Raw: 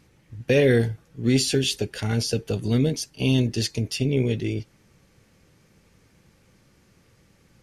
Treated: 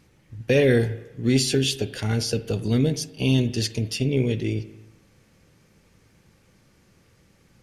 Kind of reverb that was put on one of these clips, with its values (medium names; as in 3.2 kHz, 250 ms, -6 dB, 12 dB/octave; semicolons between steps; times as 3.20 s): spring tank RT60 1 s, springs 37/45 ms, chirp 65 ms, DRR 13.5 dB